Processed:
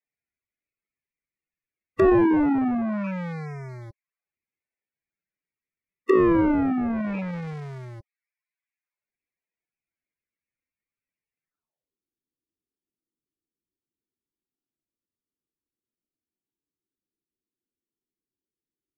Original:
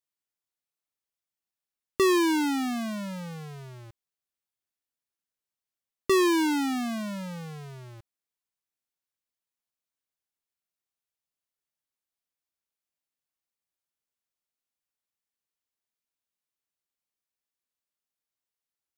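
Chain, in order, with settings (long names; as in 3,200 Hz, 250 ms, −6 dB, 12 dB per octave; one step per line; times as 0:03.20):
loose part that buzzes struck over −35 dBFS, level −31 dBFS
low-pass filter sweep 2,300 Hz → 340 Hz, 0:11.42–0:11.98
spectral peaks only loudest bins 16
in parallel at −4 dB: sample-and-hold swept by an LFO 31×, swing 160% 0.21 Hz
on the sum: treble cut that deepens with the level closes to 1,000 Hz, closed at −24 dBFS
level +2 dB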